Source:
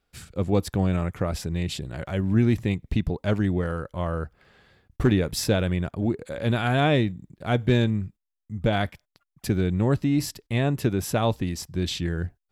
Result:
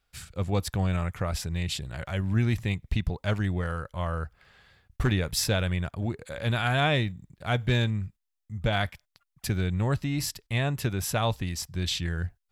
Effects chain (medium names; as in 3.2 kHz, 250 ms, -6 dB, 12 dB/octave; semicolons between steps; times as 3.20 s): peaking EQ 310 Hz -11 dB 2 oct; trim +1.5 dB